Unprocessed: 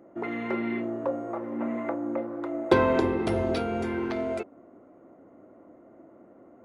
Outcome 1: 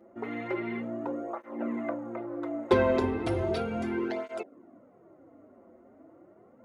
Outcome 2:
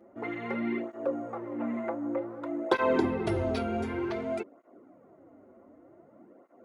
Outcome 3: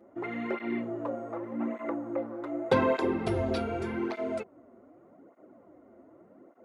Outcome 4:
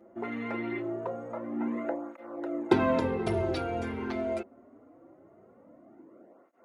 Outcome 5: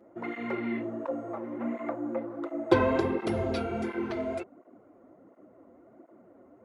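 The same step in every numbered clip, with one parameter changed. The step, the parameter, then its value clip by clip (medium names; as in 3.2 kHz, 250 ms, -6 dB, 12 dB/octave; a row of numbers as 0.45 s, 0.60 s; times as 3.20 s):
cancelling through-zero flanger, nulls at: 0.35 Hz, 0.54 Hz, 0.84 Hz, 0.23 Hz, 1.4 Hz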